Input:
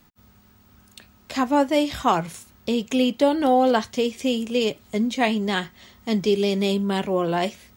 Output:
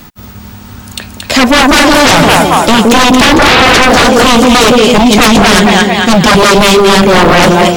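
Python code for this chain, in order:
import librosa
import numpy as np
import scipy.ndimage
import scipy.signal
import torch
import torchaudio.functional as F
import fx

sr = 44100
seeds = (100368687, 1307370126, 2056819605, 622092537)

y = fx.echo_split(x, sr, split_hz=610.0, low_ms=168, high_ms=226, feedback_pct=52, wet_db=-4)
y = fx.fold_sine(y, sr, drive_db=18, ceiling_db=-4.0)
y = y * 10.0 ** (2.5 / 20.0)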